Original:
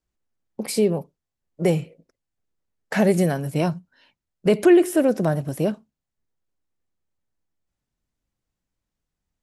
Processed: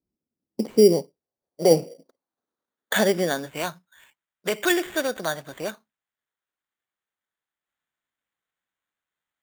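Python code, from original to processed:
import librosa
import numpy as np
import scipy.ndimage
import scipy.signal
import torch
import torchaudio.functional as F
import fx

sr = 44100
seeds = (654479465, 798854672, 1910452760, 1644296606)

y = fx.filter_sweep_bandpass(x, sr, from_hz=250.0, to_hz=1700.0, start_s=0.37, end_s=2.95, q=1.6)
y = fx.graphic_eq_10(y, sr, hz=(250, 500, 4000), db=(11, 5, -11), at=(1.7, 3.45), fade=0.02)
y = fx.sample_hold(y, sr, seeds[0], rate_hz=5200.0, jitter_pct=0)
y = y * librosa.db_to_amplitude(7.0)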